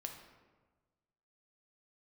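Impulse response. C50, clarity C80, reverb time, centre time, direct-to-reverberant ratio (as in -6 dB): 6.0 dB, 8.0 dB, 1.3 s, 31 ms, 3.0 dB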